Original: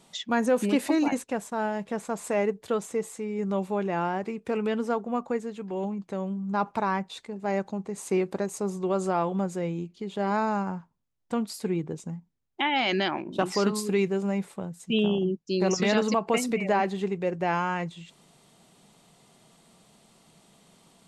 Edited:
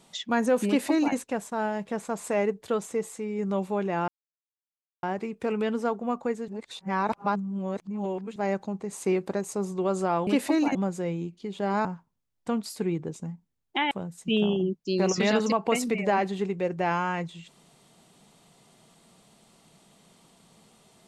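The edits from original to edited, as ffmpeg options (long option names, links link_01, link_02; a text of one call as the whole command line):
ffmpeg -i in.wav -filter_complex "[0:a]asplit=8[link_01][link_02][link_03][link_04][link_05][link_06][link_07][link_08];[link_01]atrim=end=4.08,asetpts=PTS-STARTPTS,afade=type=out:start_time=4.076:duration=0.004:curve=hsin,apad=pad_dur=0.95[link_09];[link_02]atrim=start=4.08:end=5.532,asetpts=PTS-STARTPTS,afade=type=in:duration=0.004:curve=hsin[link_10];[link_03]atrim=start=5.528:end=7.412,asetpts=PTS-STARTPTS,areverse[link_11];[link_04]atrim=start=7.408:end=9.322[link_12];[link_05]atrim=start=0.668:end=1.152[link_13];[link_06]atrim=start=9.318:end=10.422[link_14];[link_07]atrim=start=10.688:end=12.752[link_15];[link_08]atrim=start=14.528[link_16];[link_09][link_10]concat=n=2:v=0:a=1[link_17];[link_17][link_11]acrossfade=duration=0.004:curve1=hsin:curve2=hsin[link_18];[link_18][link_12]acrossfade=duration=0.004:curve1=hsin:curve2=hsin[link_19];[link_19][link_13]acrossfade=duration=0.004:curve1=hsin:curve2=hsin[link_20];[link_20][link_14]acrossfade=duration=0.004:curve1=hsin:curve2=hsin[link_21];[link_21][link_15]acrossfade=duration=0.004:curve1=hsin:curve2=hsin[link_22];[link_22][link_16]acrossfade=duration=0.004:curve1=hsin:curve2=hsin" out.wav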